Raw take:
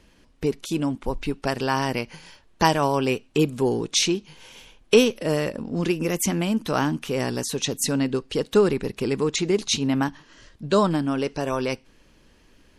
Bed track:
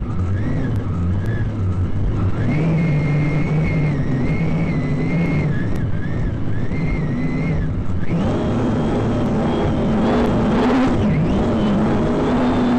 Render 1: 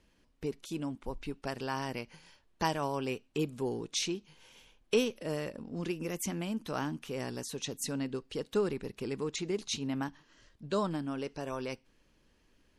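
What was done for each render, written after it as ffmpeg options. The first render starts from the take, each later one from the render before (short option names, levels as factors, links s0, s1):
-af "volume=0.251"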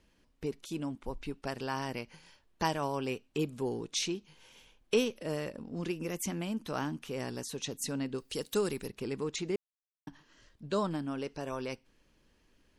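-filter_complex "[0:a]asettb=1/sr,asplit=3[s0][s1][s2];[s0]atrim=end=8.184[s3];[s1]atrim=start=8.18:end=8.88,asetpts=PTS-STARTPTS,afade=t=in:d=0.004:c=qsin,afade=t=out:st=0.696:d=0.004:c=qsin,aemphasis=mode=production:type=75fm[s4];[s2]atrim=start=8.876[s5];[s3][s4]acrossfade=d=0.004:c1=hsin:c2=qsin[s6];[s6][s5]acrossfade=d=0.004:c1=qsin:c2=hsin,asplit=3[s7][s8][s9];[s7]atrim=end=9.56,asetpts=PTS-STARTPTS,afade=t=out:st=9.556:d=0.004:c=hsin[s10];[s8]atrim=start=9.56:end=10.07,asetpts=PTS-STARTPTS,volume=0[s11];[s9]atrim=start=10.07,asetpts=PTS-STARTPTS,afade=t=in:d=0.004:c=hsin[s12];[s10][s11][s12]concat=n=3:v=0:a=1"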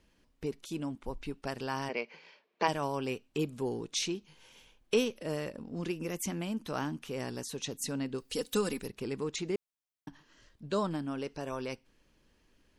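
-filter_complex "[0:a]asplit=3[s0][s1][s2];[s0]afade=t=out:st=1.88:d=0.02[s3];[s1]highpass=f=210:w=0.5412,highpass=f=210:w=1.3066,equalizer=f=290:t=q:w=4:g=-5,equalizer=f=440:t=q:w=4:g=9,equalizer=f=630:t=q:w=4:g=5,equalizer=f=1100:t=q:w=4:g=3,equalizer=f=2300:t=q:w=4:g=9,lowpass=f=5100:w=0.5412,lowpass=f=5100:w=1.3066,afade=t=in:st=1.88:d=0.02,afade=t=out:st=2.67:d=0.02[s4];[s2]afade=t=in:st=2.67:d=0.02[s5];[s3][s4][s5]amix=inputs=3:normalize=0,asettb=1/sr,asplit=3[s6][s7][s8];[s6]atrim=end=8.294[s9];[s7]atrim=start=8.29:end=8.79,asetpts=PTS-STARTPTS,afade=t=in:d=0.004:c=qsin,afade=t=out:st=0.496:d=0.004:c=qsin,aecho=1:1:4:0.65,atrim=end_sample=22050[s10];[s8]atrim=start=8.786[s11];[s9][s10]acrossfade=d=0.004:c1=hsin:c2=qsin[s12];[s12][s11]acrossfade=d=0.004:c1=qsin:c2=hsin"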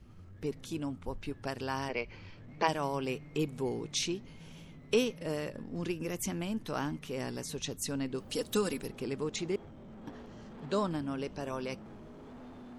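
-filter_complex "[1:a]volume=0.0237[s0];[0:a][s0]amix=inputs=2:normalize=0"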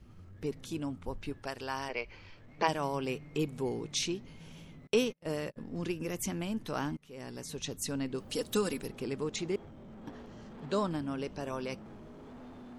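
-filter_complex "[0:a]asettb=1/sr,asplit=3[s0][s1][s2];[s0]atrim=end=1.394[s3];[s1]atrim=start=1.39:end=2.59,asetpts=PTS-STARTPTS,afade=t=in:d=0.004:c=qsin,afade=t=out:st=1.196:d=0.004:c=qsin,equalizer=f=160:t=o:w=2.2:g=-8[s4];[s2]atrim=start=2.586[s5];[s3][s4]acrossfade=d=0.004:c1=hsin:c2=qsin[s6];[s6][s5]acrossfade=d=0.004:c1=qsin:c2=hsin,asettb=1/sr,asplit=3[s7][s8][s9];[s7]atrim=end=4.874[s10];[s8]atrim=start=4.87:end=5.57,asetpts=PTS-STARTPTS,afade=t=in:d=0.004:c=qsin,afade=t=out:st=0.696:d=0.004:c=qsin,agate=range=0.02:threshold=0.01:ratio=16:release=100:detection=peak[s11];[s9]atrim=start=5.566[s12];[s10][s11]acrossfade=d=0.004:c1=hsin:c2=qsin[s13];[s13][s12]acrossfade=d=0.004:c1=qsin:c2=hsin,asplit=2[s14][s15];[s14]atrim=end=6.97,asetpts=PTS-STARTPTS,afade=t=out:st=6.966:d=0.004:c=hsin:silence=0.0630957[s16];[s15]atrim=start=6.97,asetpts=PTS-STARTPTS,afade=t=in:d=0.96:c=qsin:silence=0.0630957[s17];[s16][s17]concat=n=2:v=0:a=1"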